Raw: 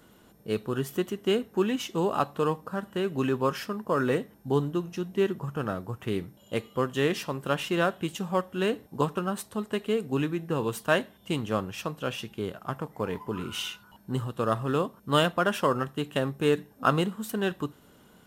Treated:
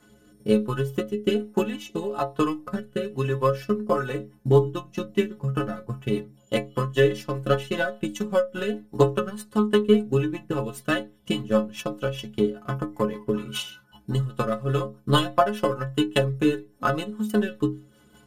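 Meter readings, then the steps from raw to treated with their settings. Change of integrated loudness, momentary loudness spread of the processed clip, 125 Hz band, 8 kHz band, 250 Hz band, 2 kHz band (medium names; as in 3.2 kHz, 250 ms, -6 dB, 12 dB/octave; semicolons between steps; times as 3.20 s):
+3.5 dB, 9 LU, +5.5 dB, +0.5 dB, +4.0 dB, +1.5 dB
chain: in parallel at -1.5 dB: compression, threshold -35 dBFS, peak gain reduction 17 dB; on the sum: transient shaper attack +11 dB, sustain -5 dB; rotary cabinet horn 1.1 Hz, later 5 Hz, at 3.64 s; inharmonic resonator 63 Hz, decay 0.51 s, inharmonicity 0.03; trim +8 dB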